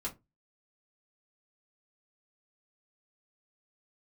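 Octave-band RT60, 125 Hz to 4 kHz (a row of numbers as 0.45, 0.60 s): 0.35, 0.25, 0.25, 0.20, 0.15, 0.15 s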